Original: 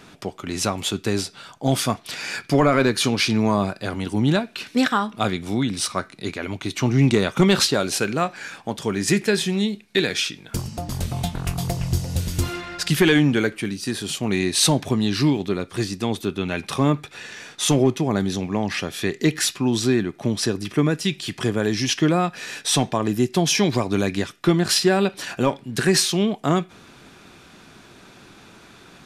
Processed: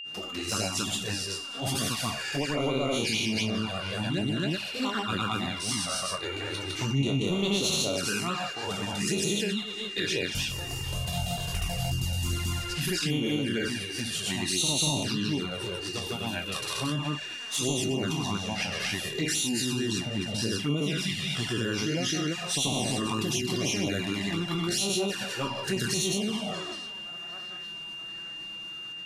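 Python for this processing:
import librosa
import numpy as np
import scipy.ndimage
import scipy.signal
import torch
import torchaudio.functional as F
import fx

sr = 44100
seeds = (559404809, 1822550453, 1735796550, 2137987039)

p1 = fx.spec_trails(x, sr, decay_s=0.64)
p2 = fx.high_shelf(p1, sr, hz=4000.0, db=5.5)
p3 = p2 + fx.echo_banded(p2, sr, ms=753, feedback_pct=62, hz=1700.0, wet_db=-16.0, dry=0)
p4 = fx.tremolo_shape(p3, sr, shape='triangle', hz=6.3, depth_pct=30)
p5 = fx.granulator(p4, sr, seeds[0], grain_ms=219.0, per_s=18.0, spray_ms=198.0, spread_st=0)
p6 = fx.env_flanger(p5, sr, rest_ms=7.1, full_db=-18.5)
p7 = fx.over_compress(p6, sr, threshold_db=-29.0, ratio=-1.0)
p8 = p6 + (p7 * librosa.db_to_amplitude(-1.5))
p9 = p8 + 10.0 ** (-30.0 / 20.0) * np.sin(2.0 * np.pi * 2800.0 * np.arange(len(p8)) / sr)
y = p9 * librosa.db_to_amplitude(-7.0)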